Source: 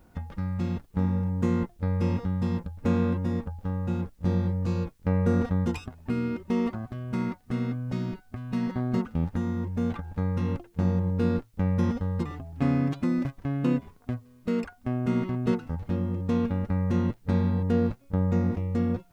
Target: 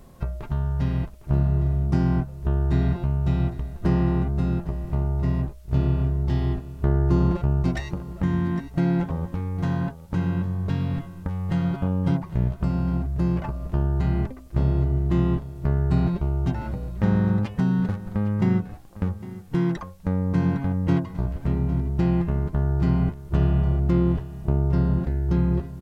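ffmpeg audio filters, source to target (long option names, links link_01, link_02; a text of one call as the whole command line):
ffmpeg -i in.wav -filter_complex "[0:a]asetrate=32667,aresample=44100,asplit=2[link_01][link_02];[link_02]acompressor=threshold=-33dB:ratio=6,volume=2.5dB[link_03];[link_01][link_03]amix=inputs=2:normalize=0,aecho=1:1:806:0.168,volume=1dB" out.wav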